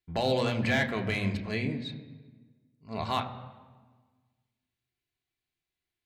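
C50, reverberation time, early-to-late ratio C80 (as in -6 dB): 11.5 dB, 1.4 s, 12.5 dB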